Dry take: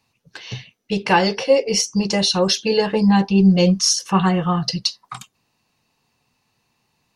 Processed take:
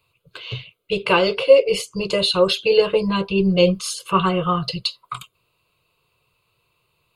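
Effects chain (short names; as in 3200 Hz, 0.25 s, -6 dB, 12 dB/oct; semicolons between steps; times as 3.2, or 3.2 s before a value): fixed phaser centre 1200 Hz, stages 8; gain +4 dB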